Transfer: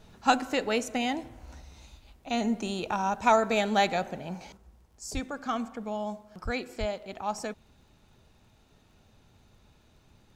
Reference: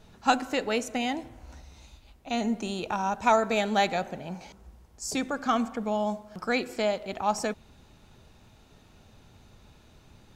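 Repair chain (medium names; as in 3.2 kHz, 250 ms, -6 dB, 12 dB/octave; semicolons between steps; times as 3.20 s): de-click; 5.13–5.25 s: high-pass 140 Hz 24 dB/octave; 6.44–6.56 s: high-pass 140 Hz 24 dB/octave; 6.79–6.91 s: high-pass 140 Hz 24 dB/octave; trim 0 dB, from 4.57 s +5.5 dB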